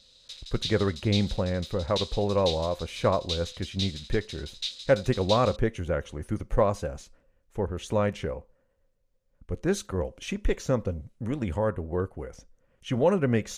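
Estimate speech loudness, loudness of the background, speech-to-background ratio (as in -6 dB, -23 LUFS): -28.5 LUFS, -36.0 LUFS, 7.5 dB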